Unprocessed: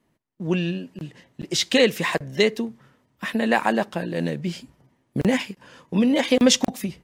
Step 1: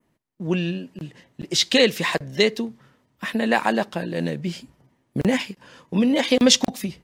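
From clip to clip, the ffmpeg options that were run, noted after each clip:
ffmpeg -i in.wav -af "adynamicequalizer=threshold=0.0178:dfrequency=4300:dqfactor=1.4:tfrequency=4300:tqfactor=1.4:attack=5:release=100:ratio=0.375:range=2.5:mode=boostabove:tftype=bell" out.wav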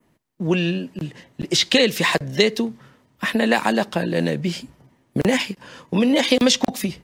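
ffmpeg -i in.wav -filter_complex "[0:a]acrossover=split=310|3100[link_01][link_02][link_03];[link_01]acompressor=threshold=-28dB:ratio=4[link_04];[link_02]acompressor=threshold=-23dB:ratio=4[link_05];[link_03]acompressor=threshold=-27dB:ratio=4[link_06];[link_04][link_05][link_06]amix=inputs=3:normalize=0,volume=6dB" out.wav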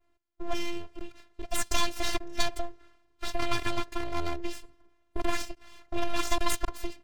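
ffmpeg -i in.wav -af "adynamicsmooth=sensitivity=6:basefreq=7200,aeval=exprs='abs(val(0))':channel_layout=same,afftfilt=real='hypot(re,im)*cos(PI*b)':imag='0':win_size=512:overlap=0.75,volume=-5dB" out.wav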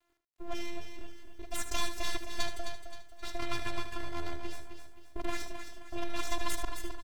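ffmpeg -i in.wav -filter_complex "[0:a]asplit=2[link_01][link_02];[link_02]aecho=0:1:263|526|789|1052:0.398|0.155|0.0606|0.0236[link_03];[link_01][link_03]amix=inputs=2:normalize=0,acrusher=bits=10:mix=0:aa=0.000001,asplit=2[link_04][link_05];[link_05]aecho=0:1:76:0.316[link_06];[link_04][link_06]amix=inputs=2:normalize=0,volume=-6.5dB" out.wav

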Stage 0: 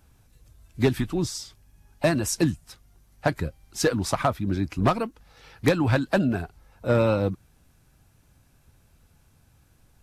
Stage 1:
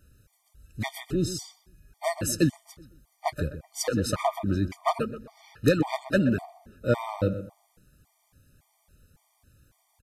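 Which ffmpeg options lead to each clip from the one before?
ffmpeg -i in.wav -filter_complex "[0:a]highshelf=frequency=7900:gain=4.5,asplit=2[link_01][link_02];[link_02]adelay=126,lowpass=frequency=1900:poles=1,volume=-11dB,asplit=2[link_03][link_04];[link_04]adelay=126,lowpass=frequency=1900:poles=1,volume=0.35,asplit=2[link_05][link_06];[link_06]adelay=126,lowpass=frequency=1900:poles=1,volume=0.35,asplit=2[link_07][link_08];[link_08]adelay=126,lowpass=frequency=1900:poles=1,volume=0.35[link_09];[link_03][link_05][link_07][link_09]amix=inputs=4:normalize=0[link_10];[link_01][link_10]amix=inputs=2:normalize=0,afftfilt=real='re*gt(sin(2*PI*1.8*pts/sr)*(1-2*mod(floor(b*sr/1024/610),2)),0)':imag='im*gt(sin(2*PI*1.8*pts/sr)*(1-2*mod(floor(b*sr/1024/610),2)),0)':win_size=1024:overlap=0.75" out.wav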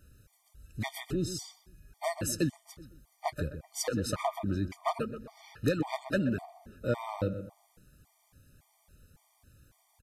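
ffmpeg -i in.wav -af "acompressor=threshold=-37dB:ratio=1.5" out.wav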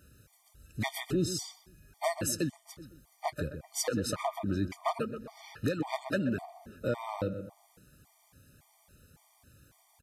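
ffmpeg -i in.wav -af "highpass=frequency=110:poles=1,alimiter=limit=-23.5dB:level=0:latency=1:release=480,volume=3.5dB" out.wav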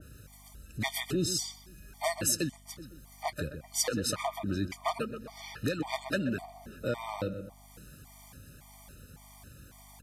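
ffmpeg -i in.wav -filter_complex "[0:a]asplit=2[link_01][link_02];[link_02]acompressor=mode=upward:threshold=-35dB:ratio=2.5,volume=0dB[link_03];[link_01][link_03]amix=inputs=2:normalize=0,aeval=exprs='val(0)+0.00355*(sin(2*PI*50*n/s)+sin(2*PI*2*50*n/s)/2+sin(2*PI*3*50*n/s)/3+sin(2*PI*4*50*n/s)/4+sin(2*PI*5*50*n/s)/5)':channel_layout=same,adynamicequalizer=threshold=0.00794:dfrequency=1700:dqfactor=0.7:tfrequency=1700:tqfactor=0.7:attack=5:release=100:ratio=0.375:range=3:mode=boostabove:tftype=highshelf,volume=-7dB" out.wav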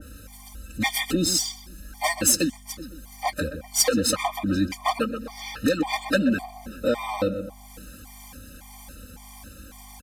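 ffmpeg -i in.wav -filter_complex "[0:a]aecho=1:1:3.8:0.95,acrossover=split=4500[link_01][link_02];[link_02]acrusher=bits=3:mode=log:mix=0:aa=0.000001[link_03];[link_01][link_03]amix=inputs=2:normalize=0,volume=6dB" out.wav

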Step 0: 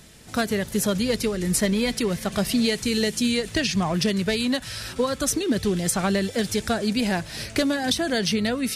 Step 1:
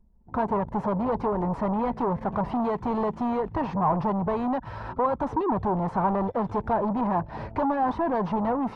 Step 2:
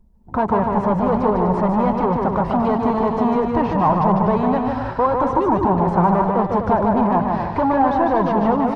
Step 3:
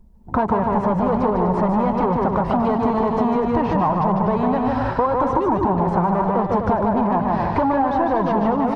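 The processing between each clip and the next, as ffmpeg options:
ffmpeg -i in.wav -af "asoftclip=type=hard:threshold=-27dB,anlmdn=2.51,lowpass=frequency=950:width_type=q:width=6.1,volume=1.5dB" out.wav
ffmpeg -i in.wav -af "aecho=1:1:150|247.5|310.9|352.1|378.8:0.631|0.398|0.251|0.158|0.1,volume=6.5dB" out.wav
ffmpeg -i in.wav -af "acompressor=threshold=-20dB:ratio=6,volume=4.5dB" out.wav

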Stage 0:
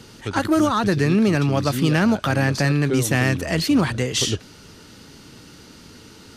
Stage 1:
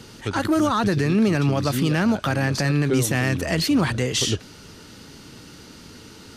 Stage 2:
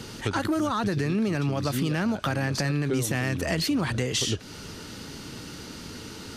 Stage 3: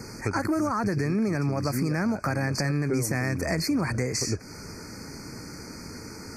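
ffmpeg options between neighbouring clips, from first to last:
ffmpeg -i in.wav -af "alimiter=limit=-13dB:level=0:latency=1:release=56,volume=1dB" out.wav
ffmpeg -i in.wav -af "acompressor=threshold=-28dB:ratio=4,volume=3.5dB" out.wav
ffmpeg -i in.wav -af "asuperstop=centerf=3300:order=20:qfactor=1.8" out.wav

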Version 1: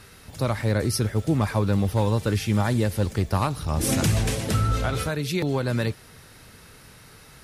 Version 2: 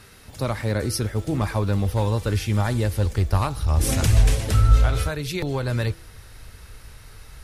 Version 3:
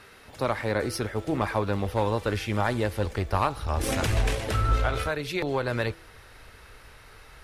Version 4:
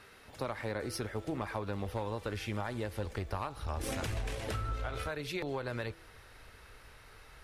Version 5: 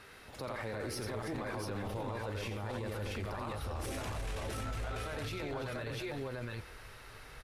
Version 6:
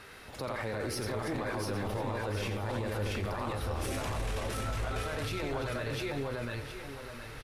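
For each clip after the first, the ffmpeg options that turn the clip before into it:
ffmpeg -i in.wav -af "bandreject=frequency=165.5:width_type=h:width=4,bandreject=frequency=331:width_type=h:width=4,bandreject=frequency=496.5:width_type=h:width=4,bandreject=frequency=662:width_type=h:width=4,bandreject=frequency=827.5:width_type=h:width=4,bandreject=frequency=993:width_type=h:width=4,bandreject=frequency=1158.5:width_type=h:width=4,bandreject=frequency=1324:width_type=h:width=4,bandreject=frequency=1489.5:width_type=h:width=4,asubboost=boost=9:cutoff=62" out.wav
ffmpeg -i in.wav -af "aeval=exprs='0.631*(cos(1*acos(clip(val(0)/0.631,-1,1)))-cos(1*PI/2))+0.0178*(cos(8*acos(clip(val(0)/0.631,-1,1)))-cos(8*PI/2))':channel_layout=same,bass=frequency=250:gain=-11,treble=frequency=4000:gain=-10,volume=1.5dB" out.wav
ffmpeg -i in.wav -af "acompressor=threshold=-27dB:ratio=6,volume=-5.5dB" out.wav
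ffmpeg -i in.wav -filter_complex "[0:a]asplit=2[link_01][link_02];[link_02]aecho=0:1:87|326|686|694:0.501|0.251|0.501|0.501[link_03];[link_01][link_03]amix=inputs=2:normalize=0,alimiter=level_in=8.5dB:limit=-24dB:level=0:latency=1:release=12,volume=-8.5dB,volume=1.5dB" out.wav
ffmpeg -i in.wav -af "aecho=1:1:715|1430|2145|2860|3575:0.316|0.142|0.064|0.0288|0.013,volume=4dB" out.wav

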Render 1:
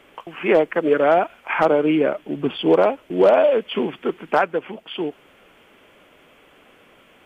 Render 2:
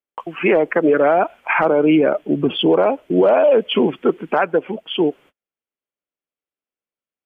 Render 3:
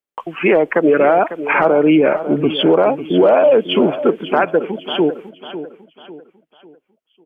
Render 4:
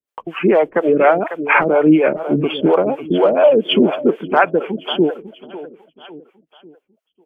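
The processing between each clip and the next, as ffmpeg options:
ffmpeg -i in.wav -af "afftdn=noise_reduction=12:noise_floor=-31,agate=range=-42dB:threshold=-50dB:ratio=16:detection=peak,alimiter=level_in=14.5dB:limit=-1dB:release=50:level=0:latency=1,volume=-6dB" out.wav
ffmpeg -i in.wav -af "aecho=1:1:549|1098|1647|2196:0.237|0.0901|0.0342|0.013,volume=2dB" out.wav
ffmpeg -i in.wav -filter_complex "[0:a]acrossover=split=450[link_01][link_02];[link_01]aeval=exprs='val(0)*(1-1/2+1/2*cos(2*PI*4.2*n/s))':channel_layout=same[link_03];[link_02]aeval=exprs='val(0)*(1-1/2-1/2*cos(2*PI*4.2*n/s))':channel_layout=same[link_04];[link_03][link_04]amix=inputs=2:normalize=0,volume=4.5dB" out.wav

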